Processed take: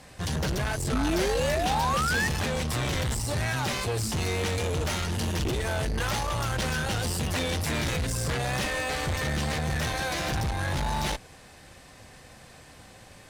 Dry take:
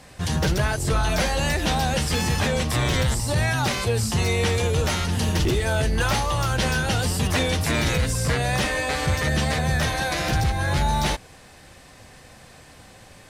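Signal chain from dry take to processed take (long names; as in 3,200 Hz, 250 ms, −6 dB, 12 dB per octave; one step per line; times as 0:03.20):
tube saturation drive 25 dB, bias 0.55
sound drawn into the spectrogram rise, 0:00.92–0:02.28, 240–1,900 Hz −28 dBFS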